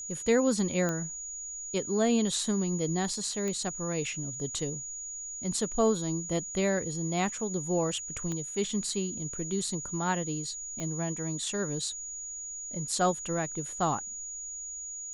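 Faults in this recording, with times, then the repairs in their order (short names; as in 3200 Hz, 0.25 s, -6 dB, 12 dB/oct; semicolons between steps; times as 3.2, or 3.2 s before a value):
tone 6800 Hz -37 dBFS
0.89 pop -18 dBFS
3.48 pop -21 dBFS
8.32 pop -23 dBFS
10.8 pop -23 dBFS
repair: de-click; notch 6800 Hz, Q 30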